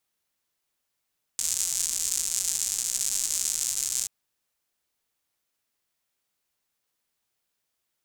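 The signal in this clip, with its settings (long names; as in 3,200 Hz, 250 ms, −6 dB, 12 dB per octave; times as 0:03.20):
rain-like ticks over hiss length 2.68 s, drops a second 190, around 7,200 Hz, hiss −24 dB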